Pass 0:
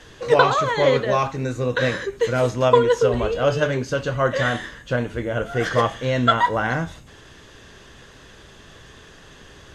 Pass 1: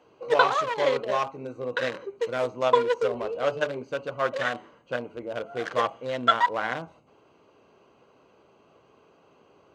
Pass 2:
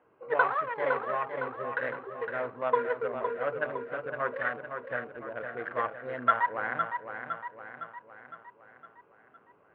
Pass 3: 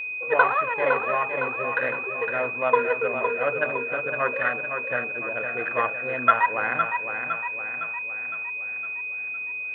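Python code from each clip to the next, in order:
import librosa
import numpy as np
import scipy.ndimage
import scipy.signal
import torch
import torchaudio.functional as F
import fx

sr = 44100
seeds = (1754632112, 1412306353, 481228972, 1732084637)

y1 = fx.wiener(x, sr, points=25)
y1 = fx.weighting(y1, sr, curve='A')
y1 = y1 * librosa.db_to_amplitude(-3.0)
y2 = fx.ladder_lowpass(y1, sr, hz=2100.0, resonance_pct=45)
y2 = fx.echo_feedback(y2, sr, ms=510, feedback_pct=53, wet_db=-7)
y2 = y2 * librosa.db_to_amplitude(1.0)
y3 = y2 + 10.0 ** (-35.0 / 20.0) * np.sin(2.0 * np.pi * 2500.0 * np.arange(len(y2)) / sr)
y3 = y3 * librosa.db_to_amplitude(6.0)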